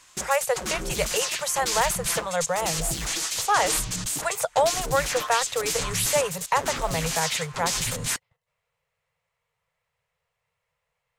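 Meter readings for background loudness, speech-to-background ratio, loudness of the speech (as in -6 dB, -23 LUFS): -28.0 LUFS, 1.0 dB, -27.0 LUFS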